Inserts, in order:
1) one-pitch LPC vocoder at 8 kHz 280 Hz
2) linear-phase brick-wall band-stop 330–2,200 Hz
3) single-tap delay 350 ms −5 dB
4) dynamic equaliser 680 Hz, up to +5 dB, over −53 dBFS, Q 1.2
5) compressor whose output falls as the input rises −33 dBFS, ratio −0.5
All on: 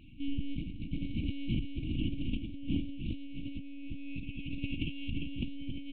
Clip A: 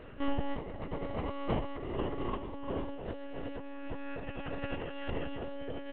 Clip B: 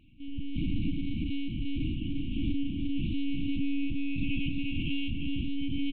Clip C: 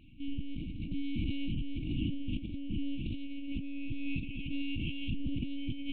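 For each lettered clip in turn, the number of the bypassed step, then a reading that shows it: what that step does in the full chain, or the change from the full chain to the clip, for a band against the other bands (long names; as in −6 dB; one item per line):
2, 500 Hz band +20.0 dB
5, change in crest factor −6.0 dB
3, change in momentary loudness spread −2 LU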